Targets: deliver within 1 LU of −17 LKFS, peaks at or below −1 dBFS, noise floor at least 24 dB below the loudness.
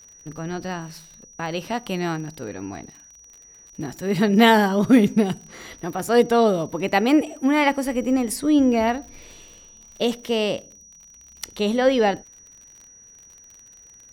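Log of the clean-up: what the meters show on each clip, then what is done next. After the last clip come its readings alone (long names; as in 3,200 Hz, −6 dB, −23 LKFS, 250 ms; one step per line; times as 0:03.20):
crackle rate 41 per second; interfering tone 5,800 Hz; level of the tone −46 dBFS; integrated loudness −21.0 LKFS; sample peak −2.5 dBFS; target loudness −17.0 LKFS
→ click removal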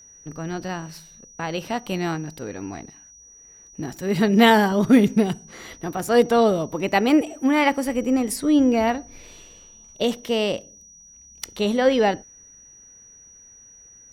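crackle rate 0.21 per second; interfering tone 5,800 Hz; level of the tone −46 dBFS
→ notch filter 5,800 Hz, Q 30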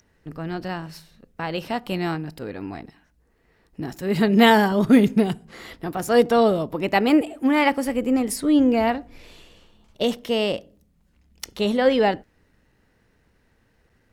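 interfering tone none found; integrated loudness −21.0 LKFS; sample peak −2.5 dBFS; target loudness −17.0 LKFS
→ level +4 dB
brickwall limiter −1 dBFS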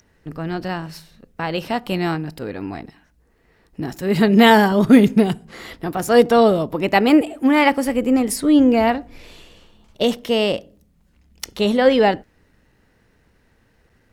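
integrated loudness −17.0 LKFS; sample peak −1.0 dBFS; background noise floor −60 dBFS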